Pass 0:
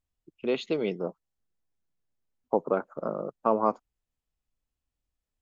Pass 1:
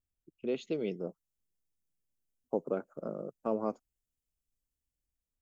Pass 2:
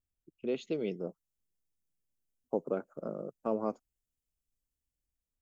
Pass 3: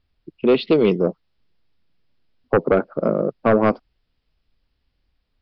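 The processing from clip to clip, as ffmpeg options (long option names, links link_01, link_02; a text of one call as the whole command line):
ffmpeg -i in.wav -filter_complex "[0:a]equalizer=frequency=1000:width_type=o:width=1:gain=-11,equalizer=frequency=2000:width_type=o:width=1:gain=-5,equalizer=frequency=4000:width_type=o:width=1:gain=-9,acrossover=split=2200[link_01][link_02];[link_02]dynaudnorm=framelen=280:gausssize=5:maxgain=7dB[link_03];[link_01][link_03]amix=inputs=2:normalize=0,volume=-4dB" out.wav
ffmpeg -i in.wav -af anull out.wav
ffmpeg -i in.wav -af "aeval=exprs='0.133*sin(PI/2*2.24*val(0)/0.133)':channel_layout=same,aresample=11025,aresample=44100,volume=9dB" out.wav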